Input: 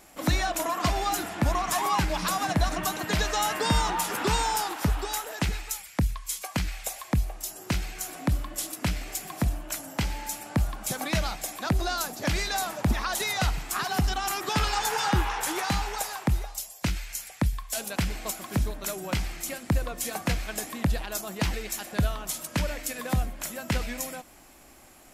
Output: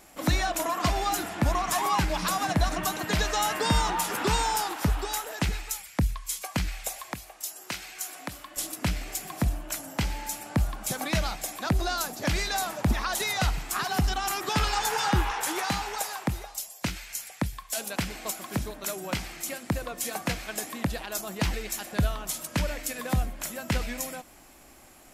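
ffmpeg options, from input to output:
-filter_complex "[0:a]asettb=1/sr,asplit=3[s0][s1][s2];[s0]atrim=end=7.134[s3];[s1]atrim=start=7.13:end=8.57,asetpts=PTS-STARTPTS,afade=t=in:d=0.004:c=qsin,afade=t=out:st=1.436:d=0.004:c=qsin,highpass=f=970:p=1[s4];[s2]atrim=start=8.566[s5];[s3][s4]acrossfade=d=0.004:c1=hsin:c2=qsin[s6];[s6][s5]acrossfade=d=0.004:c1=qsin:c2=hsin,asettb=1/sr,asplit=3[s7][s8][s9];[s7]atrim=end=15.314[s10];[s8]atrim=start=15.31:end=21.18,asetpts=PTS-STARTPTS,afade=t=in:d=0.004:c=qsin,afade=t=out:st=5.866:d=0.004:c=qsin,highpass=f=150:p=1[s11];[s9]atrim=start=21.176[s12];[s10][s11]acrossfade=d=0.004:c1=hsin:c2=qsin[s13];[s13][s12]acrossfade=d=0.004:c1=qsin:c2=hsin"

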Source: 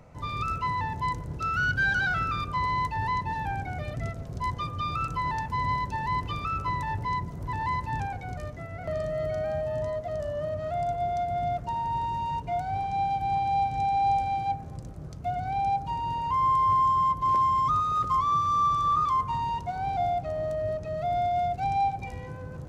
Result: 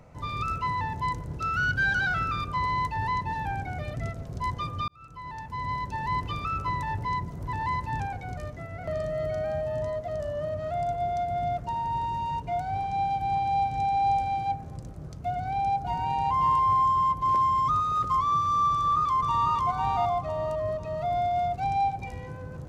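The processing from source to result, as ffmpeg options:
-filter_complex "[0:a]asplit=2[s0][s1];[s1]afade=t=in:st=15.3:d=0.01,afade=t=out:st=16.05:d=0.01,aecho=0:1:540|1080|1620:0.668344|0.133669|0.0267338[s2];[s0][s2]amix=inputs=2:normalize=0,asplit=2[s3][s4];[s4]afade=t=in:st=18.72:d=0.01,afade=t=out:st=19.55:d=0.01,aecho=0:1:500|1000|1500|2000|2500:0.794328|0.278015|0.0973052|0.0340568|0.0119199[s5];[s3][s5]amix=inputs=2:normalize=0,asplit=2[s6][s7];[s6]atrim=end=4.88,asetpts=PTS-STARTPTS,afade=t=out:st=4.876:d=0.004:c=hsin[s8];[s7]atrim=start=4.88,asetpts=PTS-STARTPTS,afade=t=in:d=1.25[s9];[s8][s9]concat=n=2:v=0:a=1"

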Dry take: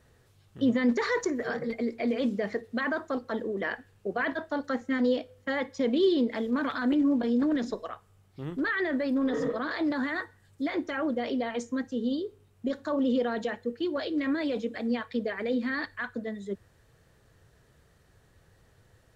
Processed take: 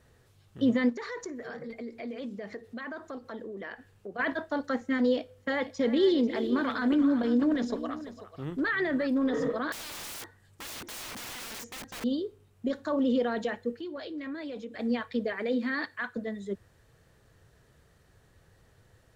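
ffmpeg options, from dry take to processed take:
-filter_complex "[0:a]asplit=3[s0][s1][s2];[s0]afade=t=out:st=0.88:d=0.02[s3];[s1]acompressor=threshold=0.00708:ratio=2:attack=3.2:release=140:knee=1:detection=peak,afade=t=in:st=0.88:d=0.02,afade=t=out:st=4.18:d=0.02[s4];[s2]afade=t=in:st=4.18:d=0.02[s5];[s3][s4][s5]amix=inputs=3:normalize=0,asettb=1/sr,asplit=3[s6][s7][s8];[s6]atrim=end=5.134[s9];[s7]atrim=start=5.13:end=9.07,asetpts=PTS-STARTPTS,afade=t=in:d=0.004:c=qsin,afade=t=out:st=3.936:d=0.004:c=qsin,aecho=1:1:342|490:0.2|0.188,atrim=end_sample=173754[s10];[s8]atrim=start=9.066[s11];[s9][s10]acrossfade=d=0.004:c1=hsin:c2=qsin[s12];[s12][s11]acrossfade=d=0.004:c1=qsin:c2=hsin,asettb=1/sr,asplit=3[s13][s14][s15];[s13]atrim=end=9.724[s16];[s14]atrim=start=9.72:end=12.04,asetpts=PTS-STARTPTS,afade=t=in:d=0.004:c=qsin,afade=t=out:st=2.316:d=0.004:c=qsin,aeval=exprs='(mod(63.1*val(0)+1,2)-1)/63.1':c=same[s17];[s15]atrim=start=12.036[s18];[s16][s17]acrossfade=d=0.004:c1=hsin:c2=qsin[s19];[s19][s18]acrossfade=d=0.004:c1=qsin:c2=hsin,asettb=1/sr,asplit=3[s20][s21][s22];[s20]atrim=end=13.744[s23];[s21]atrim=start=13.74:end=14.79,asetpts=PTS-STARTPTS,afade=t=in:d=0.004:c=qsin,afade=t=out:st=1.046:d=0.004:c=qsin,acompressor=threshold=0.00794:ratio=2:attack=3.2:release=140:knee=1:detection=peak[s24];[s22]atrim=start=14.786[s25];[s23][s24]acrossfade=d=0.004:c1=hsin:c2=qsin[s26];[s26][s25]acrossfade=d=0.004:c1=qsin:c2=hsin,asettb=1/sr,asplit=3[s27][s28][s29];[s27]atrim=end=15.334[s30];[s28]atrim=start=15.33:end=16.17,asetpts=PTS-STARTPTS,afade=t=in:d=0.004:c=qsin,afade=t=out:st=0.836:d=0.004:c=qsin,highpass=150[s31];[s29]atrim=start=16.166[s32];[s30][s31]acrossfade=d=0.004:c1=hsin:c2=qsin[s33];[s33][s32]acrossfade=d=0.004:c1=qsin:c2=hsin"

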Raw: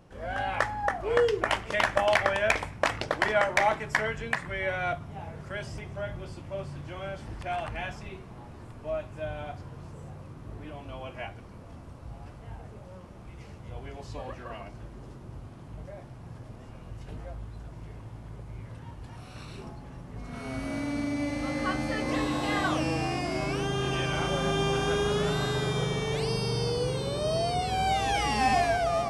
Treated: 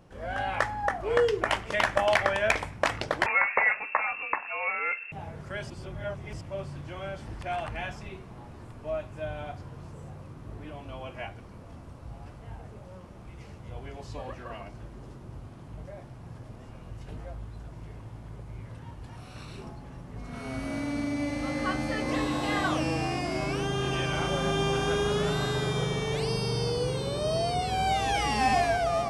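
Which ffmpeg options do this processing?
-filter_complex "[0:a]asettb=1/sr,asplit=3[s0][s1][s2];[s0]atrim=end=3.264[s3];[s1]atrim=start=3.26:end=5.12,asetpts=PTS-STARTPTS,afade=t=in:d=0.004:c=qsin,afade=t=out:st=1.856:d=0.004:c=qsin,lowpass=f=2400:t=q:w=0.5098,lowpass=f=2400:t=q:w=0.6013,lowpass=f=2400:t=q:w=0.9,lowpass=f=2400:t=q:w=2.563,afreqshift=-2800[s4];[s2]atrim=start=5.116[s5];[s3][s4]acrossfade=d=0.004:c1=hsin:c2=qsin[s6];[s6][s5]acrossfade=d=0.004:c1=qsin:c2=hsin,asplit=3[s7][s8][s9];[s7]atrim=end=5.702[s10];[s8]atrim=start=5.698:end=6.412,asetpts=PTS-STARTPTS,areverse[s11];[s9]atrim=start=6.408[s12];[s10][s11]acrossfade=d=0.004:c1=hsin:c2=hsin[s13];[s13][s12]acrossfade=d=0.004:c1=hsin:c2=hsin"

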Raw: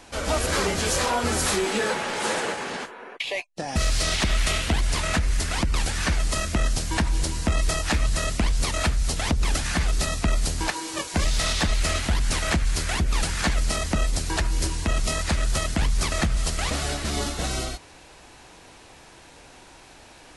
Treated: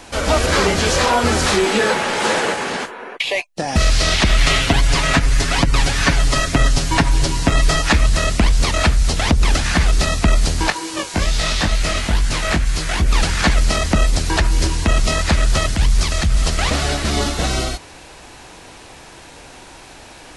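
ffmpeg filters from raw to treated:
-filter_complex "[0:a]asettb=1/sr,asplit=3[s0][s1][s2];[s0]atrim=end=4.384[s3];[s1]atrim=start=4.38:end=7.93,asetpts=PTS-STARTPTS,afade=t=in:d=0.004:c=qsin,afade=t=out:st=3.546:d=0.004:c=qsin,aecho=1:1:7.2:0.65,atrim=end_sample=156555[s4];[s2]atrim=start=7.926[s5];[s3][s4]acrossfade=d=0.004:c1=hsin:c2=qsin[s6];[s6][s5]acrossfade=d=0.004:c1=qsin:c2=hsin,asplit=3[s7][s8][s9];[s7]afade=t=out:st=10.7:d=0.02[s10];[s8]flanger=delay=18:depth=2.4:speed=2.2,afade=t=in:st=10.7:d=0.02,afade=t=out:st=13.01:d=0.02[s11];[s9]afade=t=in:st=13.01:d=0.02[s12];[s10][s11][s12]amix=inputs=3:normalize=0,asettb=1/sr,asplit=3[s13][s14][s15];[s13]atrim=end=15.684[s16];[s14]atrim=start=15.68:end=16.42,asetpts=PTS-STARTPTS,afade=t=in:d=0.004:c=qsin,afade=t=out:st=0.736:d=0.004:c=qsin,acrossover=split=130|3000[s17][s18][s19];[s18]acompressor=threshold=0.0141:ratio=2:attack=3.2:release=140:knee=2.83:detection=peak[s20];[s17][s20][s19]amix=inputs=3:normalize=0[s21];[s15]atrim=start=16.416[s22];[s16][s21]acrossfade=d=0.004:c1=hsin:c2=qsin[s23];[s23][s22]acrossfade=d=0.004:c1=qsin:c2=hsin,acrossover=split=6500[s24][s25];[s25]acompressor=threshold=0.00794:ratio=4:attack=1:release=60[s26];[s24][s26]amix=inputs=2:normalize=0,volume=2.66"

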